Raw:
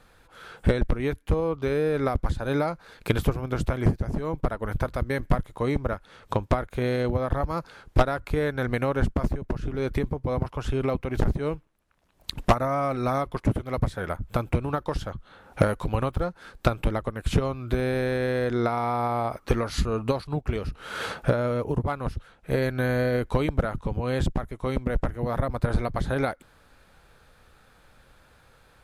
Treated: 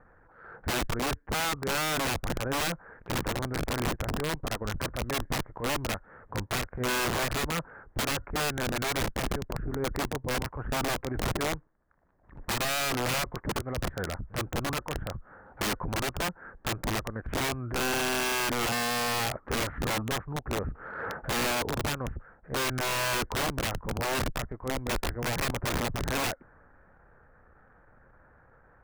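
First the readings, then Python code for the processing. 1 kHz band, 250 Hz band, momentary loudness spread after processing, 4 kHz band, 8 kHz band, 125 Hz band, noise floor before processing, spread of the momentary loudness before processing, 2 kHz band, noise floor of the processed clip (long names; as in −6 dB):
−2.0 dB, −6.0 dB, 8 LU, +8.0 dB, +13.0 dB, −8.0 dB, −58 dBFS, 6 LU, +3.0 dB, −59 dBFS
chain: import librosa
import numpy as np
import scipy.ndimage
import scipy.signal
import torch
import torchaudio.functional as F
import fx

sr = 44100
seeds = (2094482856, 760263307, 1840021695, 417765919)

y = scipy.signal.sosfilt(scipy.signal.ellip(4, 1.0, 60, 1800.0, 'lowpass', fs=sr, output='sos'), x)
y = fx.transient(y, sr, attack_db=-12, sustain_db=1)
y = (np.mod(10.0 ** (24.0 / 20.0) * y + 1.0, 2.0) - 1.0) / 10.0 ** (24.0 / 20.0)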